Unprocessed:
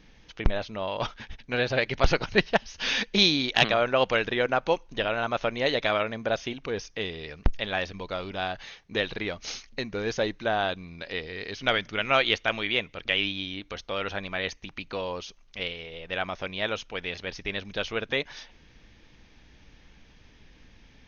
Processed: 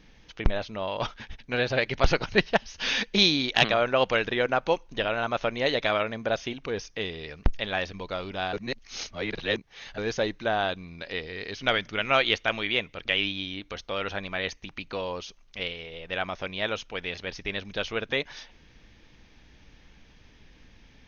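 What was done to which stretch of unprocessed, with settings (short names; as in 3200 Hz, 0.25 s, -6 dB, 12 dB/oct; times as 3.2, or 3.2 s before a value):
8.53–9.98 reverse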